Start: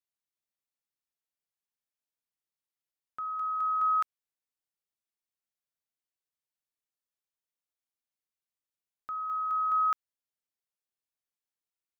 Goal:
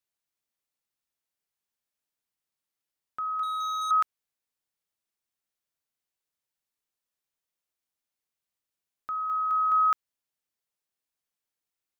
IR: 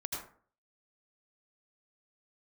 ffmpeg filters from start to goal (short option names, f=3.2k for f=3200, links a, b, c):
-filter_complex "[0:a]asettb=1/sr,asplit=3[a][b][c];[a]atrim=end=3.434[d];[b]atrim=start=3.43:end=3.91,asetpts=PTS-STARTPTS,afade=t=in:d=0.004:c=qsin,afade=t=out:st=0.476:d=0.004:c=qsin,volume=33.5dB,asoftclip=hard,volume=-33.5dB[e];[c]atrim=start=3.906[f];[d][e]acrossfade=d=0.004:c1=hsin:c2=qsin[g];[g][f]acrossfade=d=0.004:c1=qsin:c2=hsin,volume=4dB"